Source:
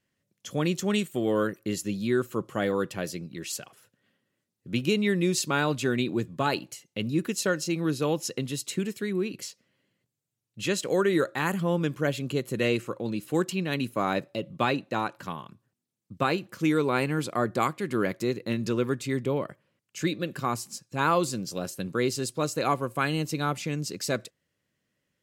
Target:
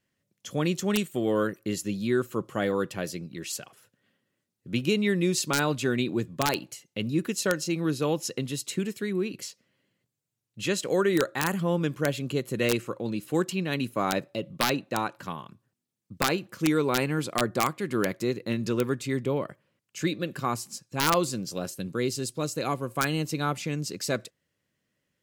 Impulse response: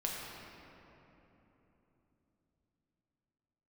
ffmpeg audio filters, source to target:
-filter_complex "[0:a]asettb=1/sr,asplit=3[link_01][link_02][link_03];[link_01]atrim=end=21.744[link_04];[link_02]atrim=start=21.74:end=22.88,asetpts=PTS-STARTPTS,afade=type=in:duration=0.004:curve=qsin,afade=type=out:start_time=1.136:duration=0.004:curve=qsin,equalizer=frequency=1100:width_type=o:width=2.4:gain=-5[link_05];[link_03]atrim=start=22.876[link_06];[link_04][link_05]acrossfade=duration=0.004:curve1=hsin:curve2=qsin[link_07];[link_07][link_06]acrossfade=duration=0.004:curve1=qsin:curve2=hsin,aeval=exprs='(mod(4.47*val(0)+1,2)-1)/4.47':channel_layout=same"

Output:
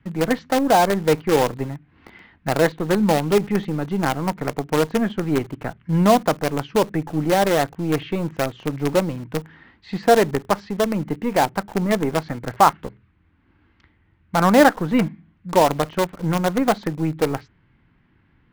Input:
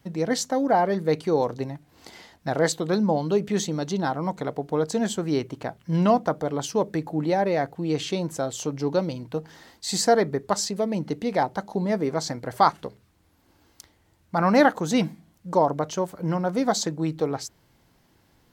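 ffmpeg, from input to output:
ffmpeg -i in.wav -filter_complex "[0:a]lowpass=frequency=2500:width=0.5412,lowpass=frequency=2500:width=1.3066,acrossover=split=370|1000[link_01][link_02][link_03];[link_02]acrusher=bits=5:dc=4:mix=0:aa=0.000001[link_04];[link_01][link_04][link_03]amix=inputs=3:normalize=0,volume=4.5dB" out.wav

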